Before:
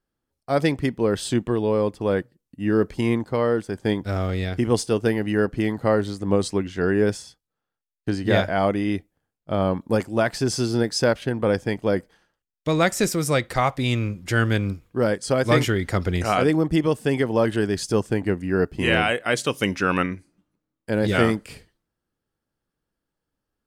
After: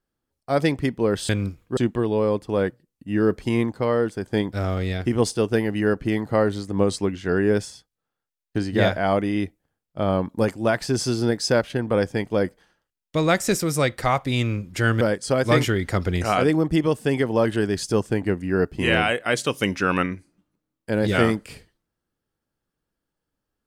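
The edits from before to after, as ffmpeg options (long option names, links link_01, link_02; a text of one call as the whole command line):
ffmpeg -i in.wav -filter_complex "[0:a]asplit=4[link_01][link_02][link_03][link_04];[link_01]atrim=end=1.292[link_05];[link_02]atrim=start=14.528:end=15.012[link_06];[link_03]atrim=start=1.288:end=14.532[link_07];[link_04]atrim=start=15.008[link_08];[link_05][link_06]acrossfade=duration=0.004:curve1=hsin:curve2=hsin[link_09];[link_09][link_07]acrossfade=duration=0.004:curve1=hsin:curve2=hsin[link_10];[link_10][link_08]acrossfade=duration=0.004:curve1=hsin:curve2=hsin" out.wav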